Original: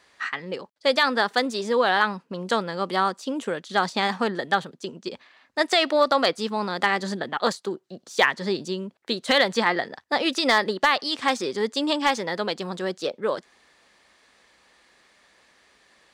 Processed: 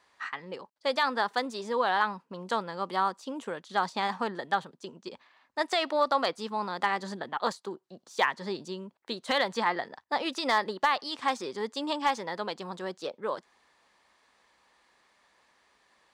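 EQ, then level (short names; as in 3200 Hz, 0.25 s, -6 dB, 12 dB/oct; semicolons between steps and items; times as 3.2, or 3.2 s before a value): bell 960 Hz +7.5 dB 0.72 oct; -9.0 dB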